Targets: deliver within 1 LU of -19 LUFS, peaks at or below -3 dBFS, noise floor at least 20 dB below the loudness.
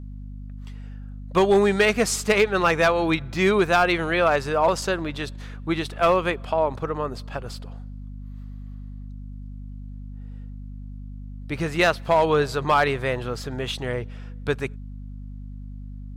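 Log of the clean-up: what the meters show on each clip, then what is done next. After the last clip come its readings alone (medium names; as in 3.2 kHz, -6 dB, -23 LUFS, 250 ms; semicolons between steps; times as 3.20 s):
clipped samples 0.3%; clipping level -11.0 dBFS; hum 50 Hz; highest harmonic 250 Hz; hum level -34 dBFS; loudness -22.5 LUFS; peak level -11.0 dBFS; loudness target -19.0 LUFS
-> clip repair -11 dBFS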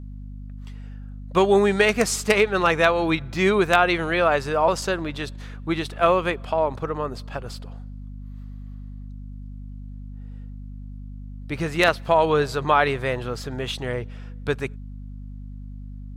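clipped samples 0.0%; hum 50 Hz; highest harmonic 250 Hz; hum level -34 dBFS
-> hum notches 50/100/150/200/250 Hz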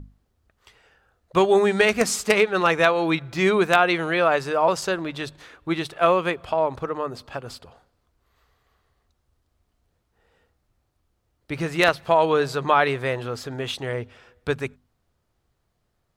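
hum not found; loudness -22.0 LUFS; peak level -1.5 dBFS; loudness target -19.0 LUFS
-> trim +3 dB; peak limiter -3 dBFS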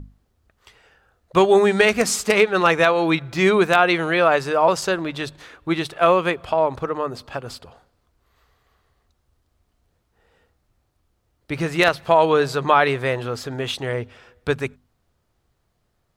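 loudness -19.0 LUFS; peak level -3.0 dBFS; noise floor -70 dBFS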